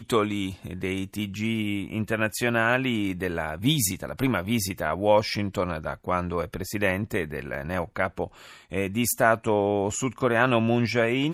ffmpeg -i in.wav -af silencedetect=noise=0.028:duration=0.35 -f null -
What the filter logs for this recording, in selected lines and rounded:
silence_start: 8.27
silence_end: 8.72 | silence_duration: 0.45